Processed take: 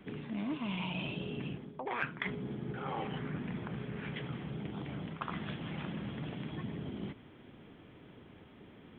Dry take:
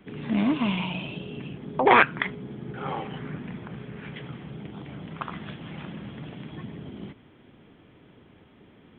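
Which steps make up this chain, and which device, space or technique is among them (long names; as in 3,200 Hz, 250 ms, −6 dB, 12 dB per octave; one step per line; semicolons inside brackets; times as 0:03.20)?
compression on the reversed sound (reversed playback; downward compressor 8 to 1, threshold −33 dBFS, peak gain reduction 20.5 dB; reversed playback)
level −1 dB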